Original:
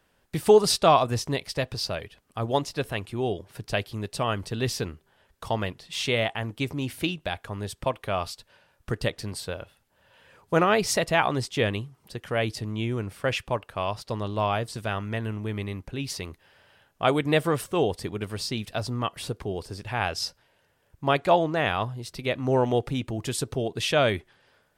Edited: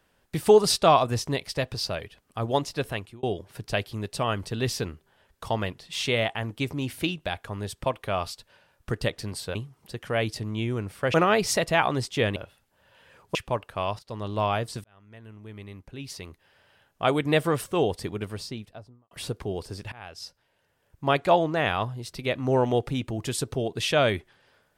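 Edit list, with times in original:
2.92–3.23 s: fade out
9.55–10.54 s: swap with 11.76–13.35 s
13.99–14.34 s: fade in, from -14 dB
14.84–17.33 s: fade in
18.07–19.11 s: studio fade out
19.92–21.12 s: fade in, from -22 dB

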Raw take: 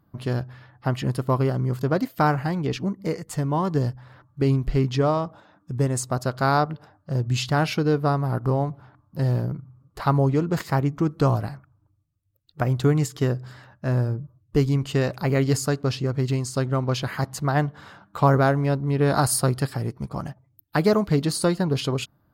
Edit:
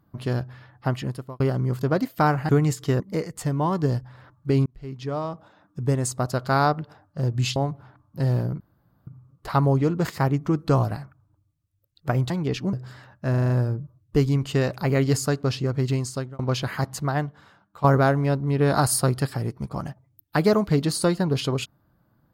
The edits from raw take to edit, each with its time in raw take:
0.87–1.40 s: fade out
2.49–2.92 s: swap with 12.82–13.33 s
4.58–5.73 s: fade in
7.48–8.55 s: delete
9.59 s: insert room tone 0.47 s
13.90 s: stutter 0.04 s, 6 plays
16.44–16.79 s: fade out
17.36–18.24 s: fade out quadratic, to -12.5 dB

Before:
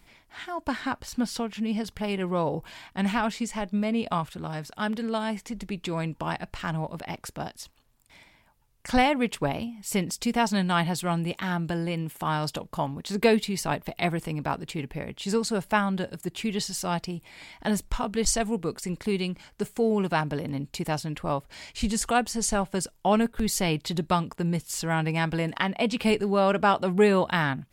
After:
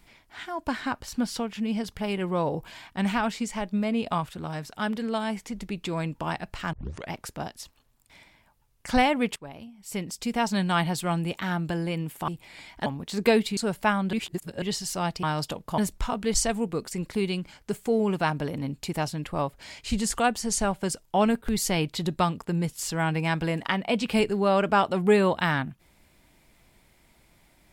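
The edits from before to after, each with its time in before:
6.73 s: tape start 0.38 s
9.36–10.68 s: fade in, from -19.5 dB
12.28–12.83 s: swap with 17.11–17.69 s
13.54–15.45 s: delete
16.01–16.50 s: reverse

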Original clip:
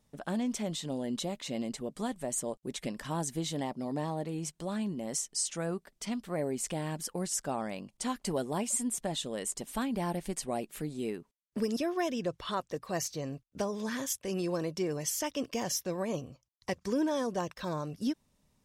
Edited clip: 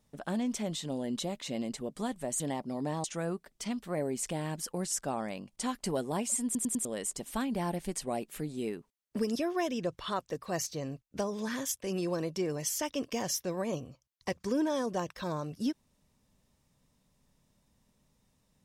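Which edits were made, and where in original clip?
2.40–3.51 s: delete
4.15–5.45 s: delete
8.86 s: stutter in place 0.10 s, 4 plays

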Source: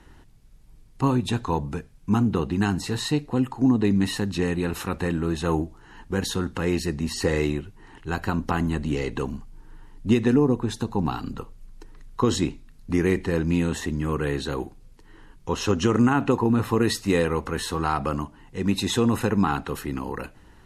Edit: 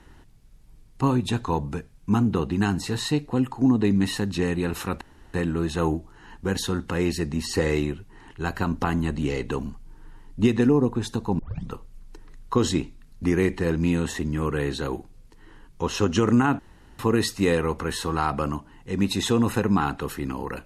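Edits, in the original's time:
5.01 s: insert room tone 0.33 s
11.06 s: tape start 0.32 s
16.26–16.66 s: room tone

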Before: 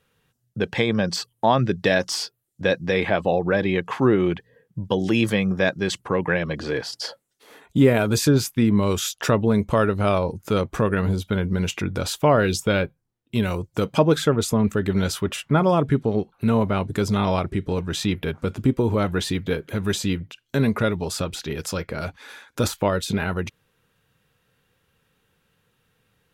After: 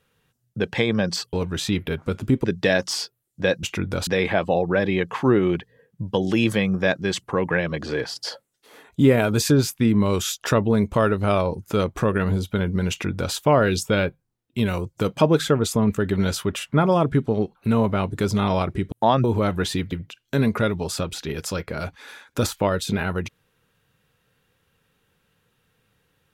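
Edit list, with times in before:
1.33–1.65 s: swap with 17.69–18.80 s
11.67–12.11 s: copy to 2.84 s
19.48–20.13 s: delete

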